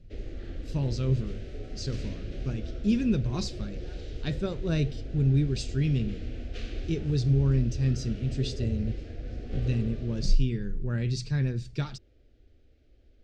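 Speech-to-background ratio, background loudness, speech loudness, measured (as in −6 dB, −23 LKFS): 9.5 dB, −39.0 LKFS, −29.5 LKFS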